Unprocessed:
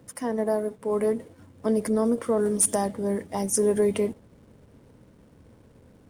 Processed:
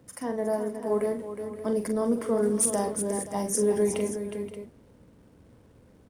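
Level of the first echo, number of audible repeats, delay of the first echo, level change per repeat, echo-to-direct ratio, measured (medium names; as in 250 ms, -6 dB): -7.0 dB, 4, 43 ms, no regular repeats, -3.5 dB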